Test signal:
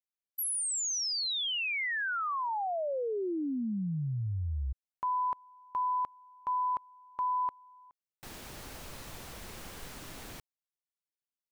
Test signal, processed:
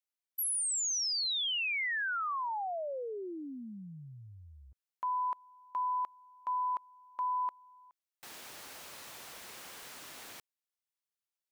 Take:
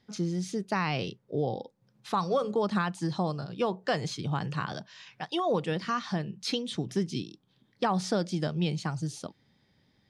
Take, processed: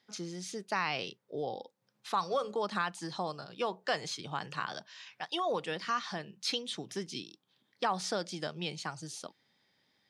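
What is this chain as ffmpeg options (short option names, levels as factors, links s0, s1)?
-af "highpass=f=790:p=1"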